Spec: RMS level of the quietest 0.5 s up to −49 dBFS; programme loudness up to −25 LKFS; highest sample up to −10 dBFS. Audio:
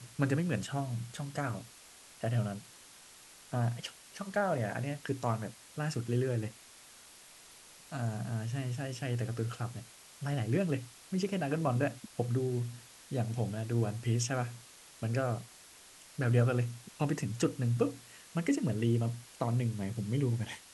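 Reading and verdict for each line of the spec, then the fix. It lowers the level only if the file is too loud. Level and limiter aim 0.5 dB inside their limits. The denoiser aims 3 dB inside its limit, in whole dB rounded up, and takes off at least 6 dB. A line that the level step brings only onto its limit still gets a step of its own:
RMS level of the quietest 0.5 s −56 dBFS: in spec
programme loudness −34.5 LKFS: in spec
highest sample −15.0 dBFS: in spec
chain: no processing needed

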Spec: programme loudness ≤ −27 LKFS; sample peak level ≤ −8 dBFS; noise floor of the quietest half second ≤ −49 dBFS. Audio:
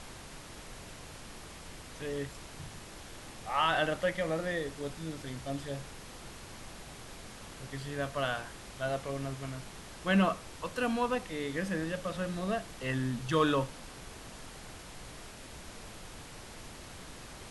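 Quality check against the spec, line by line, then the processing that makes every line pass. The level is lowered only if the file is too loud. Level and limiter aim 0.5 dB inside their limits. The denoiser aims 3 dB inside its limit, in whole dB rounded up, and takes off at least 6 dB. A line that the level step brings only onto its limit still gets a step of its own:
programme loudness −34.0 LKFS: in spec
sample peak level −15.0 dBFS: in spec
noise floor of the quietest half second −47 dBFS: out of spec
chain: broadband denoise 6 dB, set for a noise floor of −47 dBFS

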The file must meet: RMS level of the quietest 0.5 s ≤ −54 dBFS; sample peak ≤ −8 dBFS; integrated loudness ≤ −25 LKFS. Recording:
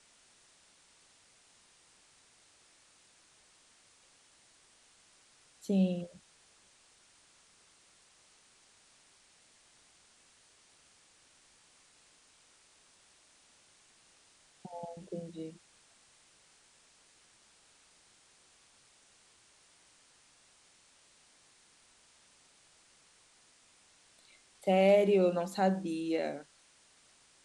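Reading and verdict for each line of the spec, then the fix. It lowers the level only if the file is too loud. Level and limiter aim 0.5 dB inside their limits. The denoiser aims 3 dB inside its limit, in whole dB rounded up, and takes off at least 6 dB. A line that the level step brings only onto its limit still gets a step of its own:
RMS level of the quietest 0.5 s −65 dBFS: in spec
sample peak −14.5 dBFS: in spec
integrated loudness −31.5 LKFS: in spec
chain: no processing needed

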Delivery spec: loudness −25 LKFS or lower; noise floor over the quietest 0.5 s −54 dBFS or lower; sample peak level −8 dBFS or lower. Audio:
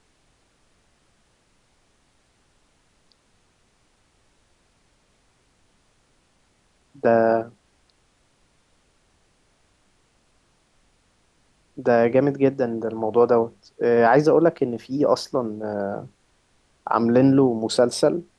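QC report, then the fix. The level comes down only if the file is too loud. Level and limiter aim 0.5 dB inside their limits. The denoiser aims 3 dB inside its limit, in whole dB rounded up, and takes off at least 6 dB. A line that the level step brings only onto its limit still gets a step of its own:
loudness −20.5 LKFS: out of spec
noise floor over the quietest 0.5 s −64 dBFS: in spec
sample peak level −5.5 dBFS: out of spec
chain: level −5 dB

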